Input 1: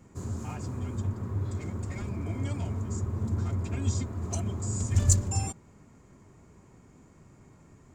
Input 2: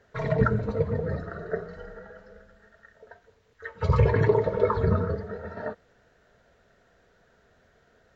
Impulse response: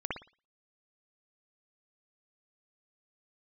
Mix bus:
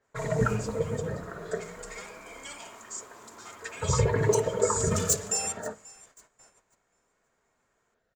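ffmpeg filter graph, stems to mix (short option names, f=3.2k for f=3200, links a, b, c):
-filter_complex "[0:a]highpass=850,volume=27.5dB,asoftclip=hard,volume=-27.5dB,adynamicequalizer=threshold=0.00126:dfrequency=2400:dqfactor=0.7:tfrequency=2400:tqfactor=0.7:attack=5:release=100:ratio=0.375:range=3.5:mode=boostabove:tftype=highshelf,volume=-2dB,asplit=3[a][b][c];[b]volume=-6dB[d];[c]volume=-18dB[e];[1:a]volume=-3dB,asplit=2[f][g];[g]volume=-23dB[h];[2:a]atrim=start_sample=2205[i];[d][h]amix=inputs=2:normalize=0[j];[j][i]afir=irnorm=-1:irlink=0[k];[e]aecho=0:1:536|1072|1608|2144|2680:1|0.36|0.13|0.0467|0.0168[l];[a][f][k][l]amix=inputs=4:normalize=0,bandreject=f=50:t=h:w=6,bandreject=f=100:t=h:w=6,bandreject=f=150:t=h:w=6,bandreject=f=200:t=h:w=6,agate=range=-12dB:threshold=-57dB:ratio=16:detection=peak,equalizer=f=75:t=o:w=0.34:g=-9.5"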